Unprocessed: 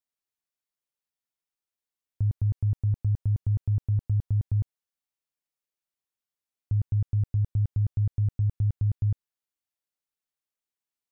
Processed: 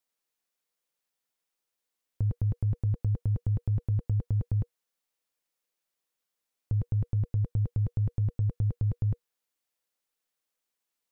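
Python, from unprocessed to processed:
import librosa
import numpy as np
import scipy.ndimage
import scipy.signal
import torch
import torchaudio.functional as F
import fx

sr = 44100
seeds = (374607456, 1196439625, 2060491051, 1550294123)

y = fx.peak_eq(x, sr, hz=81.0, db=-11.0, octaves=1.4)
y = fx.notch(y, sr, hz=460.0, q=12.0)
y = fx.small_body(y, sr, hz=(480.0,), ring_ms=90, db=11)
y = F.gain(torch.from_numpy(y), 6.0).numpy()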